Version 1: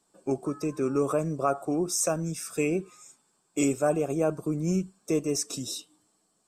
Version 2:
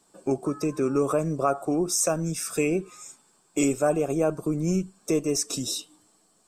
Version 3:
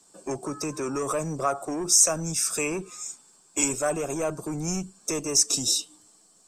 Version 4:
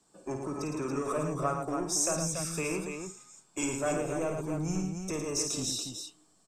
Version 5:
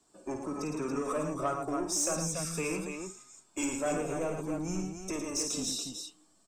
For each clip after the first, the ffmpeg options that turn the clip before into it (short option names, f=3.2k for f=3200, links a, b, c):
-filter_complex "[0:a]asubboost=boost=2.5:cutoff=56,asplit=2[a][b];[b]acompressor=threshold=-36dB:ratio=6,volume=2.5dB[c];[a][c]amix=inputs=2:normalize=0"
-filter_complex "[0:a]equalizer=f=6.6k:w=0.93:g=8.5,acrossover=split=100|690|5700[a][b][c][d];[b]asoftclip=type=tanh:threshold=-28.5dB[e];[a][e][c][d]amix=inputs=4:normalize=0"
-af "bass=f=250:g=4,treble=f=4k:g=-7,aecho=1:1:52.48|110.8|282.8:0.447|0.501|0.501,volume=-6dB"
-af "flanger=delay=2.8:depth=1.6:regen=-45:speed=0.6:shape=triangular,asoftclip=type=tanh:threshold=-24dB,volume=3.5dB"